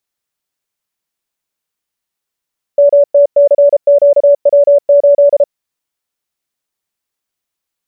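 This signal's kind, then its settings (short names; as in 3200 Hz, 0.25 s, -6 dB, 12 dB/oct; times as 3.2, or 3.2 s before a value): Morse "MTCQW8" 33 wpm 572 Hz -3 dBFS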